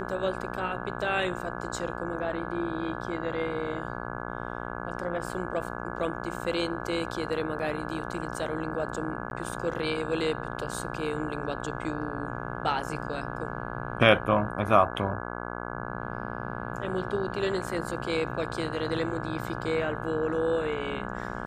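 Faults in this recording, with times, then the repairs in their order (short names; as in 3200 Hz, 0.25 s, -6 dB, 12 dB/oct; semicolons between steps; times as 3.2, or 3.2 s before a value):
buzz 60 Hz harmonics 28 -36 dBFS
9.3–9.31 gap 11 ms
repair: de-hum 60 Hz, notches 28; interpolate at 9.3, 11 ms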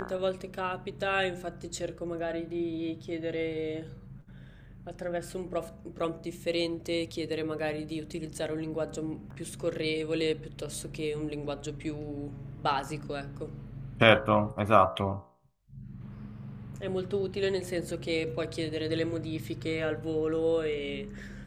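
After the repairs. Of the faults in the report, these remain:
none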